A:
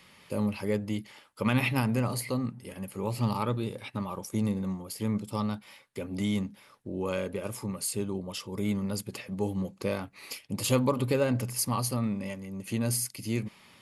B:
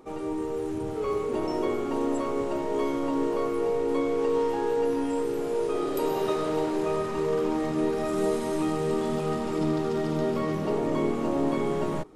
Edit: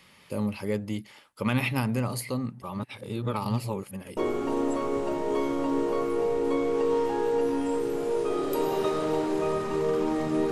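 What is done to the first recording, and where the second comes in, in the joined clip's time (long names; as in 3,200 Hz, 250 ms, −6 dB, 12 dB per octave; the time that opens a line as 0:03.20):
A
0:02.62–0:04.17: reverse
0:04.17: continue with B from 0:01.61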